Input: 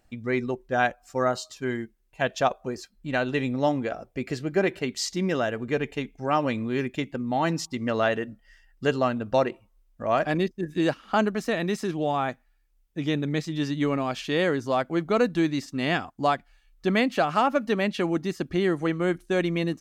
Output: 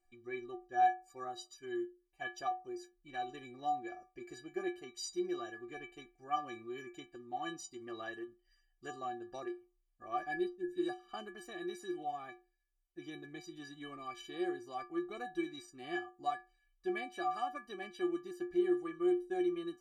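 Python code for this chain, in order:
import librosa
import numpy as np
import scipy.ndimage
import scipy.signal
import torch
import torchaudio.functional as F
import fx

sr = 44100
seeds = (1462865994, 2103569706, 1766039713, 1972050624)

y = fx.stiff_resonator(x, sr, f0_hz=350.0, decay_s=0.33, stiffness=0.03)
y = fx.dynamic_eq(y, sr, hz=2400.0, q=1.3, threshold_db=-59.0, ratio=4.0, max_db=-3)
y = F.gain(torch.from_numpy(y), 1.5).numpy()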